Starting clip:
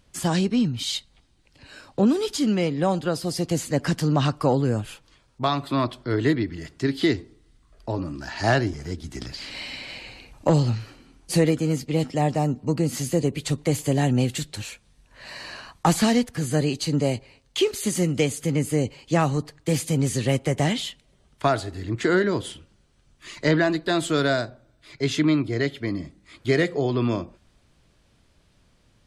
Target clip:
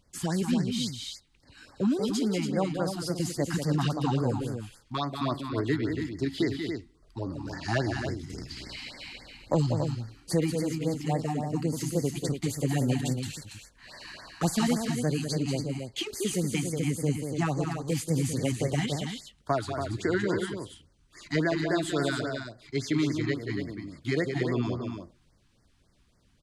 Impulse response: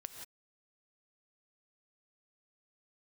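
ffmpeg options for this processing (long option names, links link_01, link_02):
-af "atempo=1.1,aecho=1:1:186.6|282.8:0.447|0.447,afftfilt=real='re*(1-between(b*sr/1024,470*pow(3200/470,0.5+0.5*sin(2*PI*3.6*pts/sr))/1.41,470*pow(3200/470,0.5+0.5*sin(2*PI*3.6*pts/sr))*1.41))':imag='im*(1-between(b*sr/1024,470*pow(3200/470,0.5+0.5*sin(2*PI*3.6*pts/sr))/1.41,470*pow(3200/470,0.5+0.5*sin(2*PI*3.6*pts/sr))*1.41))':win_size=1024:overlap=0.75,volume=-6dB"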